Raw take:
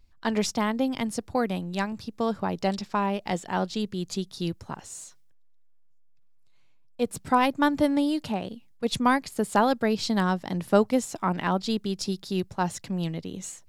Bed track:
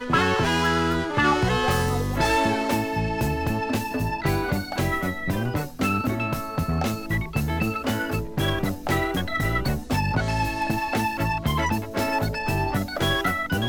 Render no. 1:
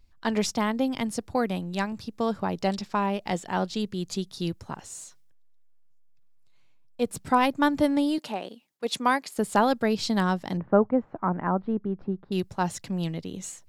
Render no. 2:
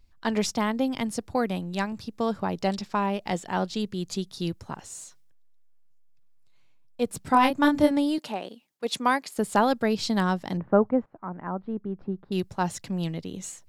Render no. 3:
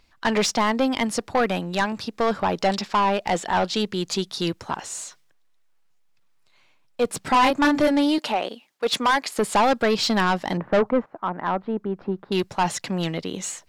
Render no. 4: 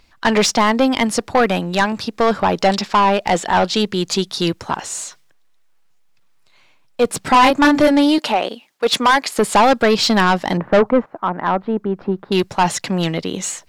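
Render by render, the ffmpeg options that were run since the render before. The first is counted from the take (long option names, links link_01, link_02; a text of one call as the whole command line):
ffmpeg -i in.wav -filter_complex "[0:a]asettb=1/sr,asplit=3[link_01][link_02][link_03];[link_01]atrim=end=8.184[link_04];[link_02]atrim=start=8.18:end=9.38,asetpts=PTS-STARTPTS,afade=type=in:duration=0.004:curve=qsin,afade=type=out:start_time=1.196:duration=0.004:curve=qsin,highpass=330[link_05];[link_03]atrim=start=9.376[link_06];[link_04][link_05]acrossfade=duration=0.004:curve1=hsin:curve2=qsin[link_07];[link_07][link_06]acrossfade=duration=0.004:curve1=qsin:curve2=hsin,asettb=1/sr,asplit=3[link_08][link_09][link_10];[link_08]atrim=end=10.574[link_11];[link_09]atrim=start=10.57:end=12.32,asetpts=PTS-STARTPTS,afade=type=in:duration=0.004:curve=qsin,afade=type=out:start_time=1.746:duration=0.004:curve=qsin,lowpass=frequency=1500:width=0.5412,lowpass=frequency=1500:width=1.3066[link_12];[link_10]atrim=start=12.316[link_13];[link_11][link_12]acrossfade=duration=0.004:curve1=hsin:curve2=qsin[link_14];[link_14][link_13]acrossfade=duration=0.004:curve1=qsin:curve2=hsin" out.wav
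ffmpeg -i in.wav -filter_complex "[0:a]asettb=1/sr,asplit=3[link_01][link_02][link_03];[link_01]atrim=end=7.304[link_04];[link_02]atrim=start=7.3:end=7.91,asetpts=PTS-STARTPTS,afade=type=in:duration=0.004:curve=qsin,afade=type=out:start_time=0.606:duration=0.004:curve=qsin,asplit=2[link_05][link_06];[link_06]adelay=27,volume=-4dB[link_07];[link_05][link_07]amix=inputs=2:normalize=0,atrim=end_sample=26901[link_08];[link_03]atrim=start=7.906[link_09];[link_04][link_08]acrossfade=duration=0.004:curve1=hsin:curve2=qsin[link_10];[link_10][link_09]acrossfade=duration=0.004:curve1=qsin:curve2=hsin,asplit=2[link_11][link_12];[link_11]atrim=end=11.06,asetpts=PTS-STARTPTS,afade=type=out:start_time=11.056:duration=0.004:curve=hsin:silence=0.211349[link_13];[link_12]atrim=start=11.06,asetpts=PTS-STARTPTS,afade=type=in:duration=1.3:silence=0.211349[link_14];[link_13][link_14]concat=n=2:v=0:a=1" out.wav
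ffmpeg -i in.wav -filter_complex "[0:a]asplit=2[link_01][link_02];[link_02]highpass=frequency=720:poles=1,volume=20dB,asoftclip=type=tanh:threshold=-7dB[link_03];[link_01][link_03]amix=inputs=2:normalize=0,lowpass=frequency=3500:poles=1,volume=-6dB,asoftclip=type=tanh:threshold=-12dB" out.wav
ffmpeg -i in.wav -af "volume=6.5dB" out.wav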